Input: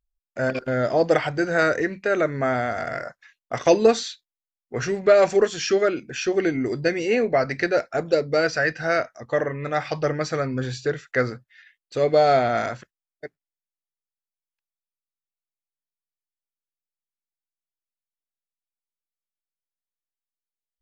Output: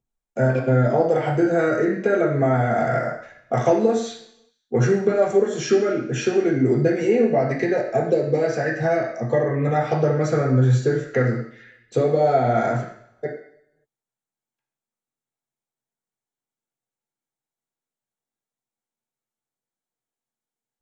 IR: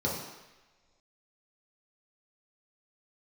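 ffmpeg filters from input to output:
-filter_complex "[0:a]lowshelf=frequency=170:gain=6,acompressor=threshold=-26dB:ratio=6,asettb=1/sr,asplit=3[link_01][link_02][link_03];[link_01]atrim=end=7.224[link_04];[link_02]atrim=start=7.22:end=9.75,asetpts=PTS-STARTPTS,afade=type=in:duration=0.004:curve=qsin,afade=type=out:start_time=2.526:duration=0.004:curve=qsin,asuperstop=centerf=1400:order=4:qfactor=8[link_05];[link_03]atrim=start=9.746[link_06];[link_04][link_05]acrossfade=duration=0.004:curve1=hsin:curve2=qsin[link_07];[link_07][link_06]acrossfade=duration=0.004:curve1=qsin:curve2=hsin[link_08];[1:a]atrim=start_sample=2205,asetrate=70560,aresample=44100[link_09];[link_08][link_09]afir=irnorm=-1:irlink=0"

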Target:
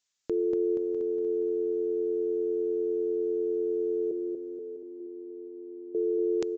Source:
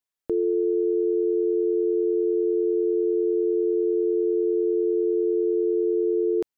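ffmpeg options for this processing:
ffmpeg -i in.wav -filter_complex "[0:a]alimiter=limit=-22dB:level=0:latency=1:release=22,asettb=1/sr,asplit=3[link_01][link_02][link_03];[link_01]atrim=end=4.114[link_04];[link_02]atrim=start=4.11:end=5.95,asetpts=PTS-STARTPTS,afade=type=in:duration=0.004:curve=qsin,afade=type=out:start_time=1.836:duration=0.004:curve=qsin,asplit=3[link_05][link_06][link_07];[link_05]bandpass=frequency=300:width_type=q:width=8,volume=0dB[link_08];[link_06]bandpass=frequency=870:width_type=q:width=8,volume=-6dB[link_09];[link_07]bandpass=frequency=2240:width_type=q:width=8,volume=-9dB[link_10];[link_08][link_09][link_10]amix=inputs=3:normalize=0[link_11];[link_03]atrim=start=5.946[link_12];[link_04][link_11]acrossfade=duration=0.004:curve1=hsin:curve2=qsin[link_13];[link_13][link_12]acrossfade=duration=0.004:curve1=qsin:curve2=hsin,crystalizer=i=6.5:c=0,asplit=2[link_14][link_15];[link_15]aecho=0:1:650:0.188[link_16];[link_14][link_16]amix=inputs=2:normalize=0,aresample=16000,aresample=44100,equalizer=frequency=170:width=1.5:gain=2.5,asplit=2[link_17][link_18];[link_18]aecho=0:1:238|476|714|952|1190|1428|1666|1904:0.596|0.334|0.187|0.105|0.0586|0.0328|0.0184|0.0103[link_19];[link_17][link_19]amix=inputs=2:normalize=0" out.wav

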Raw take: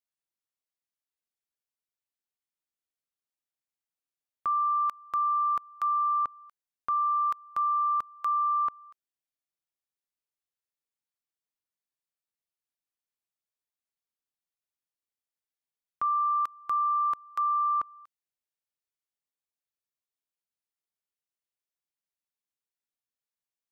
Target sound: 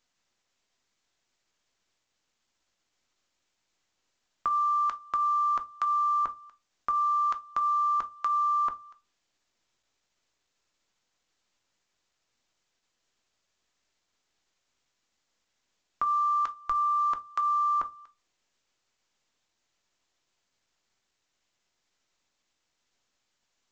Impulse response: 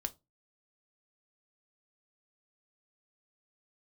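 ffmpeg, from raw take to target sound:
-filter_complex "[0:a]asplit=3[link_01][link_02][link_03];[link_01]afade=type=out:start_time=16.55:duration=0.02[link_04];[link_02]asubboost=boost=7:cutoff=67,afade=type=in:start_time=16.55:duration=0.02,afade=type=out:start_time=16.98:duration=0.02[link_05];[link_03]afade=type=in:start_time=16.98:duration=0.02[link_06];[link_04][link_05][link_06]amix=inputs=3:normalize=0[link_07];[1:a]atrim=start_sample=2205[link_08];[link_07][link_08]afir=irnorm=-1:irlink=0,volume=5dB" -ar 16000 -c:a pcm_mulaw

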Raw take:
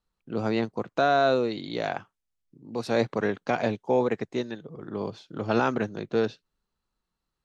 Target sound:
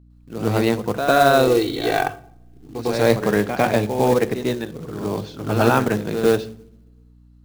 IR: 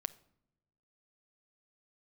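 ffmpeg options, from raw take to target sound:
-filter_complex "[0:a]asettb=1/sr,asplit=3[link_01][link_02][link_03];[link_01]atrim=end=1.374[link_04];[link_02]atrim=start=1.37:end=2.78,asetpts=PTS-STARTPTS,afade=type=in:duration=0.004:curve=qsin,afade=type=out:start_time=1.406:duration=0.004:curve=qsin,aecho=1:1:2.6:0.78,atrim=end_sample=62181[link_05];[link_03]atrim=start=2.776[link_06];[link_04][link_05]acrossfade=duration=0.004:curve1=hsin:curve2=qsin[link_07];[link_07][link_06]acrossfade=duration=0.004:curve1=qsin:curve2=hsin,asettb=1/sr,asplit=3[link_08][link_09][link_10];[link_08]atrim=end=4.914[link_11];[link_09]atrim=start=4.91:end=5.53,asetpts=PTS-STARTPTS,afade=type=in:duration=0.004:curve=qsin,afade=type=out:start_time=0.616:duration=0.004:curve=qsin,bandreject=frequency=480:width=12[link_12];[link_10]atrim=start=5.526[link_13];[link_11][link_12]acrossfade=duration=0.004:curve1=hsin:curve2=qsin[link_14];[link_14][link_13]acrossfade=duration=0.004:curve1=qsin:curve2=hsin,bandreject=frequency=72.81:width_type=h:width=4,bandreject=frequency=145.62:width_type=h:width=4,bandreject=frequency=218.43:width_type=h:width=4,bandreject=frequency=291.24:width_type=h:width=4,bandreject=frequency=364.05:width_type=h:width=4,bandreject=frequency=436.86:width_type=h:width=4,bandreject=frequency=509.67:width_type=h:width=4,asplit=2[link_15][link_16];[1:a]atrim=start_sample=2205,adelay=102[link_17];[link_16][link_17]afir=irnorm=-1:irlink=0,volume=9.5dB[link_18];[link_15][link_18]amix=inputs=2:normalize=0,acrusher=bits=4:mode=log:mix=0:aa=0.000001,lowshelf=frequency=78:gain=10.5,aeval=exprs='val(0)+0.00447*(sin(2*PI*60*n/s)+sin(2*PI*2*60*n/s)/2+sin(2*PI*3*60*n/s)/3+sin(2*PI*4*60*n/s)/4+sin(2*PI*5*60*n/s)/5)':channel_layout=same,volume=-1.5dB"

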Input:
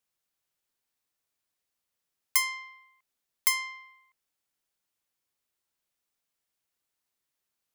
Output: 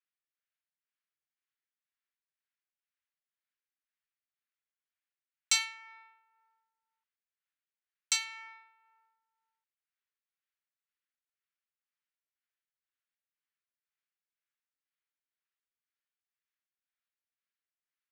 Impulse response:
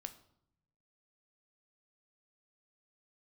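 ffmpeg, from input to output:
-af "asetrate=18846,aresample=44100,adynamicsmooth=sensitivity=3.5:basefreq=1900,highpass=frequency=1500:width=0.5412,highpass=frequency=1500:width=1.3066,tremolo=f=2:d=0.55,lowpass=11000,asoftclip=type=tanh:threshold=-14.5dB"

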